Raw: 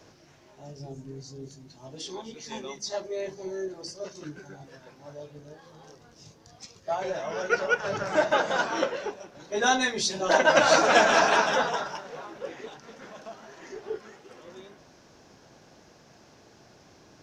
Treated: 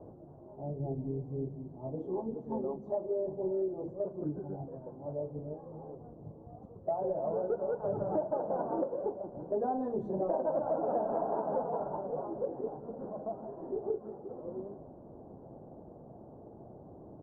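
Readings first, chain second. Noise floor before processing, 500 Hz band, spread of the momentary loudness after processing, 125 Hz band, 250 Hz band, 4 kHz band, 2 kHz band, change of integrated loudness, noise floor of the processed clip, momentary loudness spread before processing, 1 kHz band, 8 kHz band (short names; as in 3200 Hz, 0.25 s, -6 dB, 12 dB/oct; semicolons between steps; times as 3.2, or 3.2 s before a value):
-56 dBFS, -4.5 dB, 19 LU, +2.5 dB, -2.0 dB, under -40 dB, under -35 dB, -10.5 dB, -52 dBFS, 24 LU, -11.0 dB, under -40 dB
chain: inverse Chebyshev low-pass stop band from 2000 Hz, stop band 50 dB; compressor 6:1, threshold -36 dBFS, peak gain reduction 17.5 dB; feedback echo 0.186 s, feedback 59%, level -19.5 dB; gain +6 dB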